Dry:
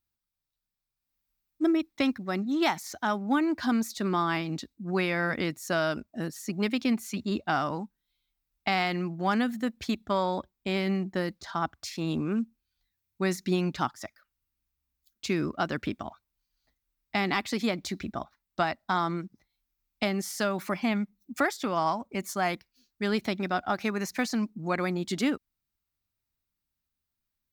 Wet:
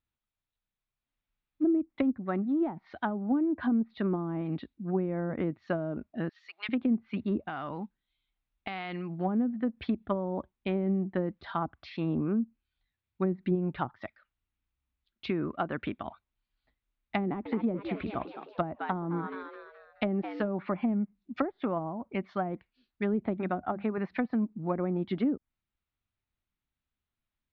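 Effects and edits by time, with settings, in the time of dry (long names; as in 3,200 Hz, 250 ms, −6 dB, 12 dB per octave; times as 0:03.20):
0:06.29–0:06.69: Bessel high-pass filter 1,500 Hz, order 4
0:07.42–0:09.19: downward compressor 10 to 1, threshold −32 dBFS
0:13.55–0:14.00: parametric band 250 Hz −6 dB
0:15.30–0:16.07: low-shelf EQ 430 Hz −4 dB
0:17.24–0:20.48: echo with shifted repeats 212 ms, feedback 43%, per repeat +100 Hz, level −10 dB
0:23.34–0:23.98: mains-hum notches 50/100/150/200 Hz
whole clip: treble cut that deepens with the level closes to 420 Hz, closed at −23 dBFS; Butterworth low-pass 3,700 Hz 36 dB per octave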